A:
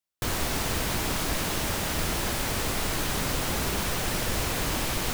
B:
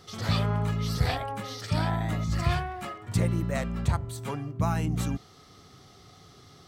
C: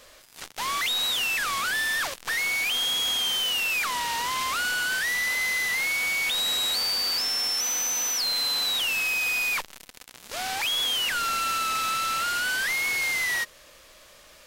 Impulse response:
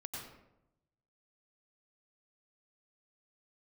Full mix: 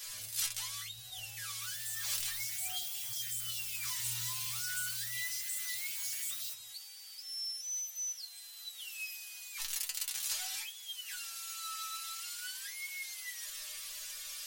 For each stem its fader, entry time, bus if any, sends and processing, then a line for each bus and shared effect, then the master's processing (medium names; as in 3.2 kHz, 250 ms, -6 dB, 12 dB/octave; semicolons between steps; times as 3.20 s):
-6.5 dB, 1.40 s, no send, differentiator; level rider gain up to 6 dB; step-sequenced high-pass 11 Hz 630–7800 Hz
-4.0 dB, 0.00 s, send -12.5 dB, steep low-pass 790 Hz 96 dB/octave; compressor with a negative ratio -36 dBFS, ratio -1
+0.5 dB, 0.00 s, no send, treble shelf 2.9 kHz +12 dB; compressor with a negative ratio -32 dBFS, ratio -1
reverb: on, RT60 0.85 s, pre-delay 86 ms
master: amplifier tone stack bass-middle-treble 10-0-10; inharmonic resonator 120 Hz, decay 0.25 s, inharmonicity 0.002